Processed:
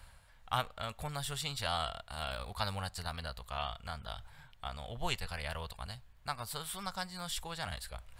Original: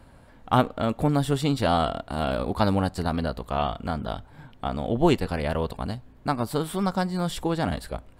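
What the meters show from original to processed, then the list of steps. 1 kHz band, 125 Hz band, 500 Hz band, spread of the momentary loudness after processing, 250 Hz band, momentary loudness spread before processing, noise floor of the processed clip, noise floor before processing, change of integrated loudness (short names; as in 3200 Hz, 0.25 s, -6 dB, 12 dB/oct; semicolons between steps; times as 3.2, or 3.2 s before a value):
-12.0 dB, -15.0 dB, -18.0 dB, 9 LU, -23.5 dB, 9 LU, -60 dBFS, -52 dBFS, -13.0 dB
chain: passive tone stack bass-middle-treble 10-0-10; reverse; upward compressor, threshold -43 dBFS; reverse; gain -1.5 dB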